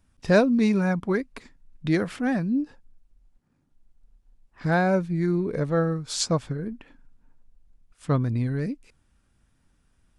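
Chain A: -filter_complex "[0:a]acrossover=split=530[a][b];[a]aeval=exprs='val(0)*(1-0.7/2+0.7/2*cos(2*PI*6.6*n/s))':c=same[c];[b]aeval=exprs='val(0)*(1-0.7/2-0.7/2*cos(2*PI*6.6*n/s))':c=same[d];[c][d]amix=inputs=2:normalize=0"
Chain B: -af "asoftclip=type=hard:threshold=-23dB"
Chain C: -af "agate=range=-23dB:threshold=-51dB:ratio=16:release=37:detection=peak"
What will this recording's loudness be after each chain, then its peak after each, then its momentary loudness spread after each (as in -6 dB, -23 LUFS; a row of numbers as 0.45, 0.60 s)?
-28.0, -28.5, -25.0 LUFS; -10.0, -23.0, -7.0 dBFS; 11, 12, 15 LU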